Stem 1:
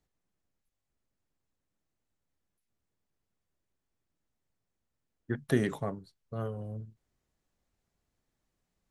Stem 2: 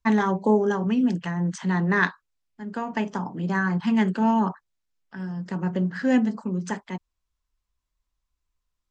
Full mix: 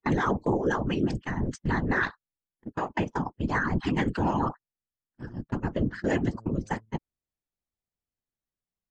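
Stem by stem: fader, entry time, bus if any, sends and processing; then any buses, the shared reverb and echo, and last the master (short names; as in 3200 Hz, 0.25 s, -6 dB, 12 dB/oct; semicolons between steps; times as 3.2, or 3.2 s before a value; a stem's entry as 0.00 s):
-15.0 dB, 0.00 s, no send, treble ducked by the level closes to 310 Hz, closed at -31 dBFS
+2.0 dB, 0.00 s, no send, whisperiser; gate -30 dBFS, range -50 dB; harmonic-percussive split harmonic -18 dB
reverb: off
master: limiter -16.5 dBFS, peak gain reduction 8 dB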